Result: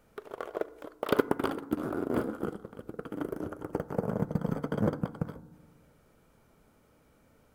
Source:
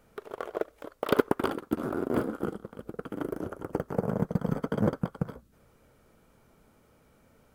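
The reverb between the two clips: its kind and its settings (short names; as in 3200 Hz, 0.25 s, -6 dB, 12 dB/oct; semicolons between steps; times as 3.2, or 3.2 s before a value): FDN reverb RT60 1.4 s, low-frequency decay 1.3×, high-frequency decay 0.25×, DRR 16.5 dB; gain -2 dB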